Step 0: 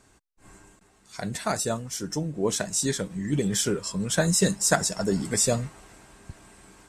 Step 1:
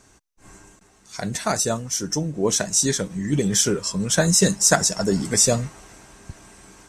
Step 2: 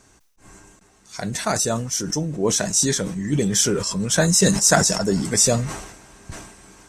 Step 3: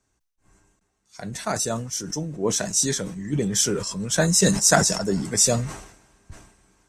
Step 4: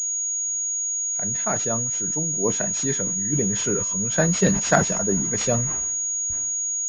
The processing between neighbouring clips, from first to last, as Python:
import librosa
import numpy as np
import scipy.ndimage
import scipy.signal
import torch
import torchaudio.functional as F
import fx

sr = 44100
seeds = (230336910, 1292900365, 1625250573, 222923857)

y1 = fx.peak_eq(x, sr, hz=6000.0, db=8.0, octaves=0.27)
y1 = y1 * librosa.db_to_amplitude(4.0)
y2 = fx.sustainer(y1, sr, db_per_s=62.0)
y3 = fx.band_widen(y2, sr, depth_pct=40)
y3 = y3 * librosa.db_to_amplitude(-3.5)
y4 = fx.pwm(y3, sr, carrier_hz=6700.0)